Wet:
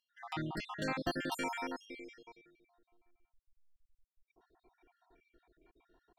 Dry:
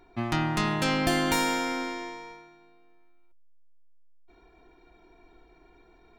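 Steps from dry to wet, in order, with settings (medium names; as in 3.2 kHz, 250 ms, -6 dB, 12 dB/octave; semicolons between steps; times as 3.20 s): random holes in the spectrogram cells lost 58%; tone controls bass -4 dB, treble -6 dB; trim -7.5 dB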